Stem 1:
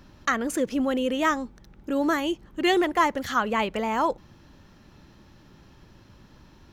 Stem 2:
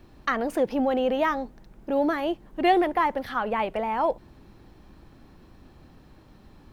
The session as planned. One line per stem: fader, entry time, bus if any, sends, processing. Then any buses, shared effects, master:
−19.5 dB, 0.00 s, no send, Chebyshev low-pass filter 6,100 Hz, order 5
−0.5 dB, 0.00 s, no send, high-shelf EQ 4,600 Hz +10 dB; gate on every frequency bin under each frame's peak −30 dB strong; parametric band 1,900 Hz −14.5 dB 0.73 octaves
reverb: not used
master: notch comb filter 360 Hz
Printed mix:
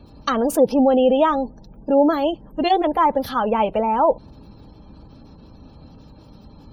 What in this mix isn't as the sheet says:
stem 1: missing Chebyshev low-pass filter 6,100 Hz, order 5
stem 2 −0.5 dB → +9.0 dB

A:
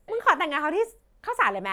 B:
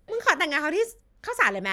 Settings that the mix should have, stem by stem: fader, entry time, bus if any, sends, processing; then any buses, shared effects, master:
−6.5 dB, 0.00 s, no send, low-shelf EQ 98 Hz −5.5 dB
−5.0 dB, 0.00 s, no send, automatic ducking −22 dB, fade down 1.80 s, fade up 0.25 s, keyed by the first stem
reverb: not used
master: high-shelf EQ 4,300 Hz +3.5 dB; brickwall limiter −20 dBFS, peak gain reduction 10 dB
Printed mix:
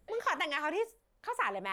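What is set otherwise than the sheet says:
stem B: polarity flipped
master: missing high-shelf EQ 4,300 Hz +3.5 dB

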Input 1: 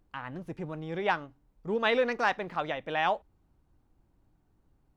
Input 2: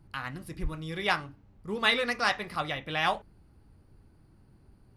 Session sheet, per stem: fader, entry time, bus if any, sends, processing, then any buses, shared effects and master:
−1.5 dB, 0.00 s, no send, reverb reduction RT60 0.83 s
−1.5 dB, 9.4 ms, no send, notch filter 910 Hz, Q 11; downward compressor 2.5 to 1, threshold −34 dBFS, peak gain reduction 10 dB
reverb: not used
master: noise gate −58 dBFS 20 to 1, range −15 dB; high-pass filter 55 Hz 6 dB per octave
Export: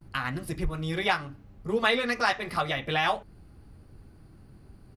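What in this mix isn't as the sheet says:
stem 2 −1.5 dB → +7.0 dB
master: missing high-pass filter 55 Hz 6 dB per octave

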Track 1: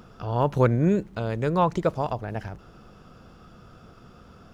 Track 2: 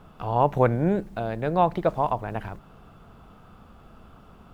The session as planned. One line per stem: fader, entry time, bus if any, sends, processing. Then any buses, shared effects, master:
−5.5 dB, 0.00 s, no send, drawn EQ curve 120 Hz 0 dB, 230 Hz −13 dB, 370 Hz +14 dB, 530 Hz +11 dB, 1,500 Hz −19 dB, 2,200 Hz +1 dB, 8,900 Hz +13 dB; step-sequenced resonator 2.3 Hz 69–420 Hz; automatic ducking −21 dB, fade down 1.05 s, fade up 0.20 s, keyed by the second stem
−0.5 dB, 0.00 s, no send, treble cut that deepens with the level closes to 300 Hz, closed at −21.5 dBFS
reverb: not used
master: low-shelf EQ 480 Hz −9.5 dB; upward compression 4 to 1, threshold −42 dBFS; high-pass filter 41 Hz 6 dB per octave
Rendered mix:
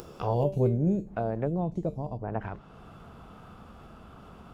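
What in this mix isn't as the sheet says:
stem 1 −5.5 dB → +4.5 dB
master: missing low-shelf EQ 480 Hz −9.5 dB

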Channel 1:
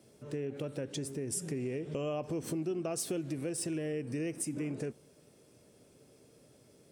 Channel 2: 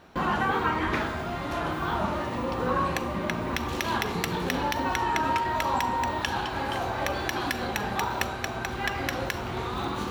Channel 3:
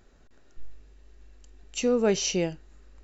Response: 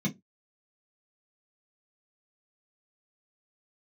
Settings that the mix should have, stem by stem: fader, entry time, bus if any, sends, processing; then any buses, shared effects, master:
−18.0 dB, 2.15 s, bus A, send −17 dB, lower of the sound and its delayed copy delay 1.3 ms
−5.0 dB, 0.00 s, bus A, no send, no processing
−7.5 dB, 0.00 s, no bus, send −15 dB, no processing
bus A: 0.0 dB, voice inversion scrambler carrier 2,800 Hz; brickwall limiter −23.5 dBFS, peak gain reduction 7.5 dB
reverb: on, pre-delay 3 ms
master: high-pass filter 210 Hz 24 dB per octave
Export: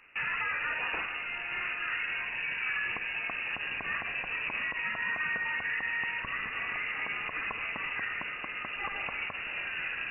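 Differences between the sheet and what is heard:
stem 1 −18.0 dB → −26.0 dB
stem 3: muted
master: missing high-pass filter 210 Hz 24 dB per octave

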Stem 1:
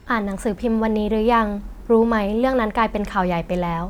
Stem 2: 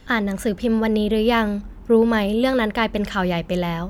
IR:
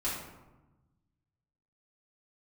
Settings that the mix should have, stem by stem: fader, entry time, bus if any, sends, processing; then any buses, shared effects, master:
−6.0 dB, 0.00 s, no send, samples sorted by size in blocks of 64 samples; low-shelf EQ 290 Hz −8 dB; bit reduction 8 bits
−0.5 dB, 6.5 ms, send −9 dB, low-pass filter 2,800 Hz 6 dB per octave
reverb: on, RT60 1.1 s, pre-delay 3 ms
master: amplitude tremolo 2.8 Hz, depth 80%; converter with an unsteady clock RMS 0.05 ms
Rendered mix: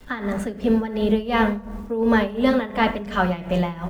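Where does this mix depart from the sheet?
stem 1: missing samples sorted by size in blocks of 64 samples
master: missing converter with an unsteady clock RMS 0.05 ms

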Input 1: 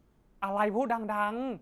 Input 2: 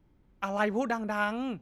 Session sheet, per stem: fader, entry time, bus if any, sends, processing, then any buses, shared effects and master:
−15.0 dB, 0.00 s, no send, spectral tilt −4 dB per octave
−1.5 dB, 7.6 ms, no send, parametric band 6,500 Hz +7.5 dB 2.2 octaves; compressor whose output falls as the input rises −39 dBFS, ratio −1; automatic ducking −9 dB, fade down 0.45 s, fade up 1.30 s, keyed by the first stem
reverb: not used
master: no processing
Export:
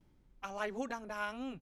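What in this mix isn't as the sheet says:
stem 1 −15.0 dB → −22.5 dB
stem 2: missing compressor whose output falls as the input rises −39 dBFS, ratio −1

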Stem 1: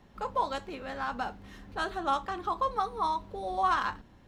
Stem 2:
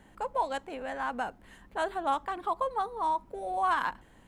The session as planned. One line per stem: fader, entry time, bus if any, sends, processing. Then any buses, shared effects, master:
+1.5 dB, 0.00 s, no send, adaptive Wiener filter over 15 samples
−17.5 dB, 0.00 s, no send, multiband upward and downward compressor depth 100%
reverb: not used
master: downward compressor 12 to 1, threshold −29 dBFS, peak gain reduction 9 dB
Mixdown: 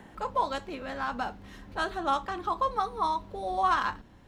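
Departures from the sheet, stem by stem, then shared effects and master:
stem 1: missing adaptive Wiener filter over 15 samples
master: missing downward compressor 12 to 1, threshold −29 dBFS, peak gain reduction 9 dB

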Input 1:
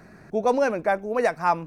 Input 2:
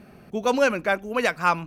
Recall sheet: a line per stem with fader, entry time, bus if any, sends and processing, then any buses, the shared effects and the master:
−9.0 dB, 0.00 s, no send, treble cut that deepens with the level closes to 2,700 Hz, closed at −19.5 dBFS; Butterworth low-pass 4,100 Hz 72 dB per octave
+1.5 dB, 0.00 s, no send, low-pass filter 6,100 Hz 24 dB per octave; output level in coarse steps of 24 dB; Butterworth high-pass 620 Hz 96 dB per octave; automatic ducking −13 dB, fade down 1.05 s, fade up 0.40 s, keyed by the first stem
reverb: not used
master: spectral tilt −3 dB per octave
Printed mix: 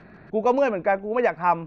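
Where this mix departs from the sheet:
stem 1 −9.0 dB → +1.0 dB
master: missing spectral tilt −3 dB per octave

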